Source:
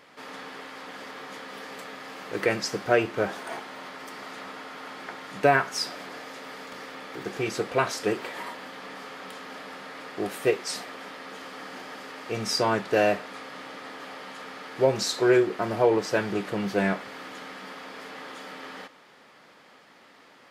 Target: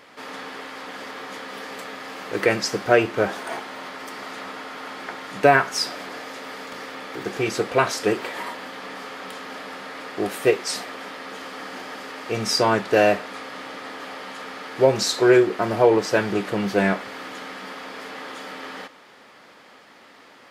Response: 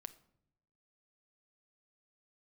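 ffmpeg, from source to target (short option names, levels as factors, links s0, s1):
-af "equalizer=f=160:t=o:w=0.25:g=-5.5,volume=1.78"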